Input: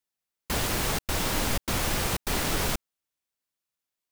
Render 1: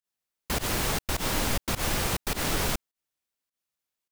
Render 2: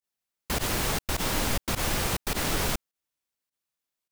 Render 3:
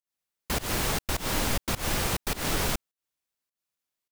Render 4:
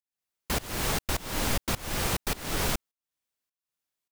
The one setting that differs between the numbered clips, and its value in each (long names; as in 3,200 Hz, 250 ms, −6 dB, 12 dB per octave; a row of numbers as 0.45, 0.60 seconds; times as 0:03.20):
fake sidechain pumping, release: 99, 61, 172, 395 milliseconds